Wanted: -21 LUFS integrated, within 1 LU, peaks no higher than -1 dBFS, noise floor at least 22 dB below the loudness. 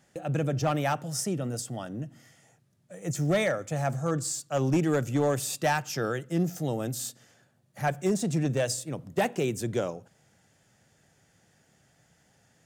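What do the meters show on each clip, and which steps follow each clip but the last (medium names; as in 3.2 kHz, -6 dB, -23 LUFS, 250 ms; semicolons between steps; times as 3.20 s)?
clipped samples 0.4%; clipping level -18.5 dBFS; loudness -29.5 LUFS; peak level -18.5 dBFS; loudness target -21.0 LUFS
-> clip repair -18.5 dBFS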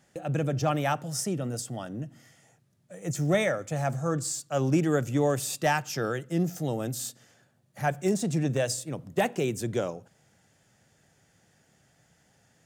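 clipped samples 0.0%; loudness -29.0 LUFS; peak level -12.5 dBFS; loudness target -21.0 LUFS
-> trim +8 dB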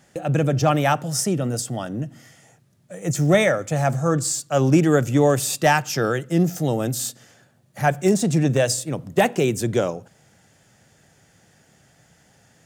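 loudness -21.0 LUFS; peak level -4.5 dBFS; noise floor -58 dBFS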